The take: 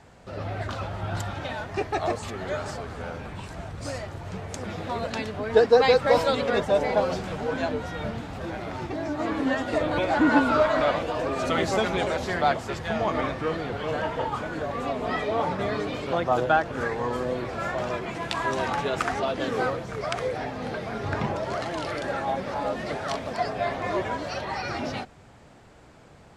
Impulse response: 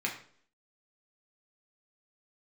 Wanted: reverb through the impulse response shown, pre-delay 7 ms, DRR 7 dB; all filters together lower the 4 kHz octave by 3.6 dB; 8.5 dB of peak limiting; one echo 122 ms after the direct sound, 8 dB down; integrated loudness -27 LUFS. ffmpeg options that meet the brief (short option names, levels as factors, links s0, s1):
-filter_complex "[0:a]equalizer=f=4000:t=o:g=-4.5,alimiter=limit=0.178:level=0:latency=1,aecho=1:1:122:0.398,asplit=2[s0][s1];[1:a]atrim=start_sample=2205,adelay=7[s2];[s1][s2]afir=irnorm=-1:irlink=0,volume=0.224[s3];[s0][s3]amix=inputs=2:normalize=0,volume=1.06"